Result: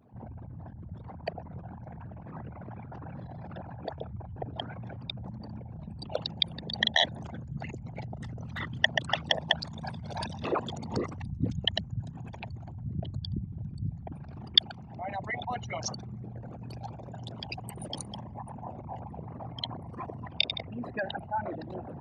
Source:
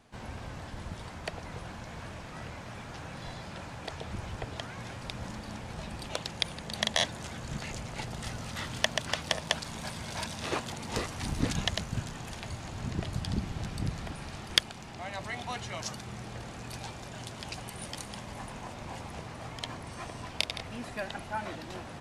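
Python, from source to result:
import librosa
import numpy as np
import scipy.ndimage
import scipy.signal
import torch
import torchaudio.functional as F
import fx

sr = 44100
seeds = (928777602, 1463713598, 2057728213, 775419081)

y = fx.envelope_sharpen(x, sr, power=3.0)
y = scipy.signal.sosfilt(scipy.signal.butter(2, 110.0, 'highpass', fs=sr, output='sos'), y)
y = y * 10.0 ** (3.5 / 20.0)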